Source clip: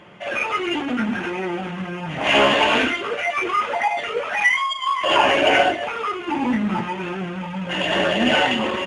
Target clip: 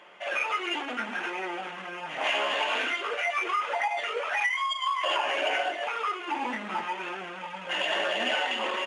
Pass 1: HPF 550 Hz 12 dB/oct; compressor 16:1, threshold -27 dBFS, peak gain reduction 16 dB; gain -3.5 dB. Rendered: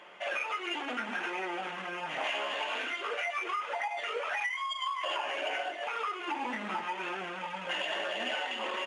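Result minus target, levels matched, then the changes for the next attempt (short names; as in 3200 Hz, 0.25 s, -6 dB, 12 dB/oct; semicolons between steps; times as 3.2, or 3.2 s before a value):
compressor: peak gain reduction +6.5 dB
change: compressor 16:1, threshold -20 dBFS, peak gain reduction 9 dB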